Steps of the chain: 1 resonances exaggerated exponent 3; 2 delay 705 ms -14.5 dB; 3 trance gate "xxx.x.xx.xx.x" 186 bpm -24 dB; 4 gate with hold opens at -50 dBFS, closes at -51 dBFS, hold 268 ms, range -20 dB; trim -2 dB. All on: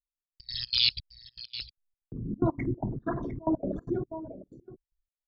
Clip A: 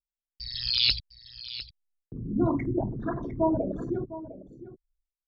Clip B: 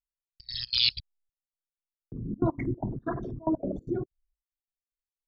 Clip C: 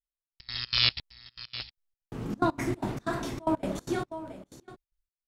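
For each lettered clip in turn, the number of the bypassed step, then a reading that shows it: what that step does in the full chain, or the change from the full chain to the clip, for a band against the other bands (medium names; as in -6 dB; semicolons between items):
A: 3, 500 Hz band +2.5 dB; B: 2, momentary loudness spread change -2 LU; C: 1, 1 kHz band +6.5 dB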